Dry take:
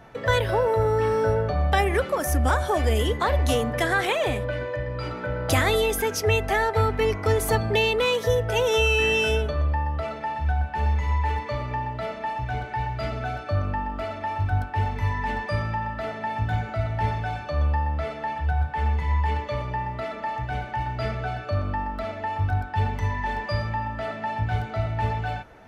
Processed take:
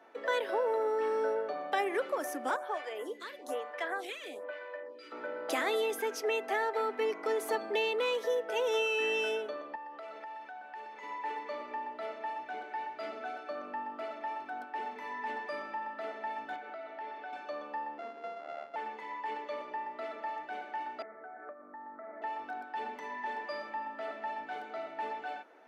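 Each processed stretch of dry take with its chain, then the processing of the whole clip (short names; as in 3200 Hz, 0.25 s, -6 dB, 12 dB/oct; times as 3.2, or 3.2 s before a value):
2.56–5.12 HPF 490 Hz 6 dB/oct + photocell phaser 1.1 Hz
9.75–11.03 HPF 410 Hz 6 dB/oct + compressor, threshold -32 dBFS
16.56–17.33 BPF 260–4200 Hz + compressor 2.5:1, threshold -32 dBFS
17.98–18.76 sample sorter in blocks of 64 samples + tape spacing loss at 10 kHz 37 dB
21.02–22.22 steep low-pass 2100 Hz 96 dB/oct + compressor 12:1, threshold -32 dBFS
whole clip: steep high-pass 270 Hz 36 dB/oct; high shelf 4000 Hz -6.5 dB; gain -8 dB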